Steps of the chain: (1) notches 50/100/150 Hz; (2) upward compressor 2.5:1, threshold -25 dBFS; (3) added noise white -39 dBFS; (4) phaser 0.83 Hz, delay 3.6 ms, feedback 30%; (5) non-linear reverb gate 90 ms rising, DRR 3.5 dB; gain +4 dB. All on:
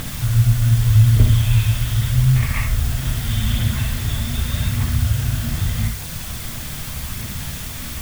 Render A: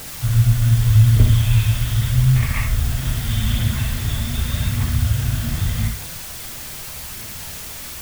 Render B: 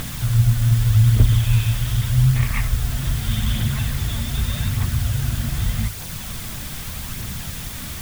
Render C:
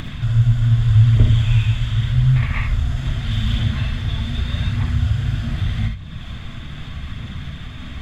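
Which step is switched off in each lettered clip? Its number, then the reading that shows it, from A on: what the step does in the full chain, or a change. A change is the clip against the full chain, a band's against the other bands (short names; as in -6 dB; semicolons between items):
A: 2, momentary loudness spread change +2 LU; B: 5, loudness change -1.5 LU; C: 3, 125 Hz band +2.0 dB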